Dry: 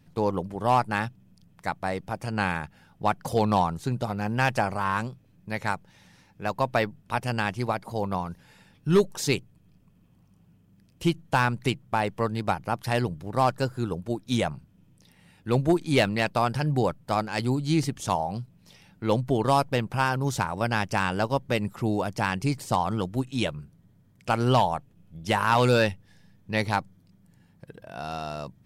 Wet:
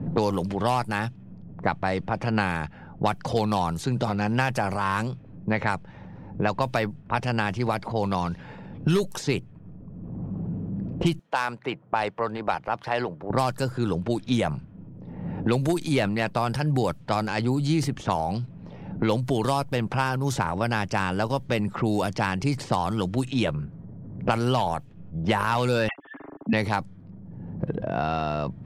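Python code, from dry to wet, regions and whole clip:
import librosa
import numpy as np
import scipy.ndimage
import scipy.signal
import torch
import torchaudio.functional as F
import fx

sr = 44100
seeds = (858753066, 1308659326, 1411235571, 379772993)

y = fx.chain(x, sr, fx.highpass(hz=550.0, slope=12),
    fx.peak_eq(hz=1900.0, db=-4.0, octaves=2.9), at=(11.19, 13.3))
y = fx.chain(y, sr, fx.sine_speech(),
    fx.comb(ms=7.3, depth=0.83),
    fx.small_body(hz=(300.0, 2100.0), ring_ms=40, db=9), at=(25.88, 26.53))
y = fx.transient(y, sr, attack_db=-1, sustain_db=6)
y = fx.env_lowpass(y, sr, base_hz=530.0, full_db=-21.5)
y = fx.band_squash(y, sr, depth_pct=100)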